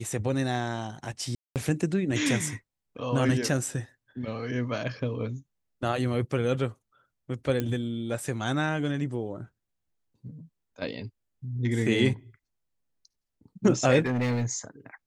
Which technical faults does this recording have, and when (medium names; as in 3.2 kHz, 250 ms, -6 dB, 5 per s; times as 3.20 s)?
1.35–1.56 s: dropout 208 ms
7.60 s: pop -15 dBFS
14.00–14.45 s: clipped -23 dBFS